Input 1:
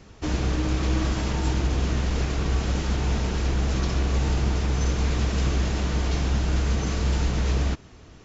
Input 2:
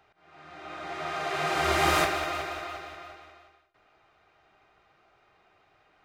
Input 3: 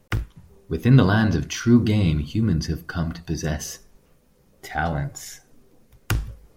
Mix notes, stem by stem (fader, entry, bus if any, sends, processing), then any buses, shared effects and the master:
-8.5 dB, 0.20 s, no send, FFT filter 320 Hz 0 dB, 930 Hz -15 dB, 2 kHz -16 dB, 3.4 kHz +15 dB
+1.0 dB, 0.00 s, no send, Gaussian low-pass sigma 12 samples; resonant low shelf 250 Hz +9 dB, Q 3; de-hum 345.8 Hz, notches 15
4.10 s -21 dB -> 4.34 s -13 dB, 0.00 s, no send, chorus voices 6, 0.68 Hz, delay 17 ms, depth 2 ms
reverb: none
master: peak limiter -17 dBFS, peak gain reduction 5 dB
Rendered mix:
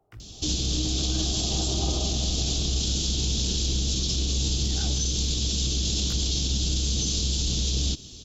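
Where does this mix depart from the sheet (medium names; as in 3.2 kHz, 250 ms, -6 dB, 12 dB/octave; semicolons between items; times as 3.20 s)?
stem 1 -8.5 dB -> +1.5 dB; stem 2: missing resonant low shelf 250 Hz +9 dB, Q 3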